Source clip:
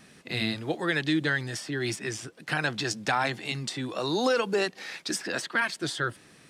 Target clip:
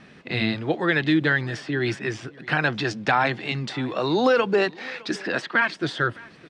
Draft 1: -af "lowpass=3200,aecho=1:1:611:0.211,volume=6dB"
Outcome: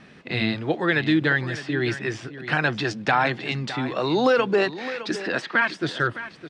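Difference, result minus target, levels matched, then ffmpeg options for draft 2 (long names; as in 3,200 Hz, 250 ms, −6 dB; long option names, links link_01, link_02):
echo-to-direct +9.5 dB
-af "lowpass=3200,aecho=1:1:611:0.0708,volume=6dB"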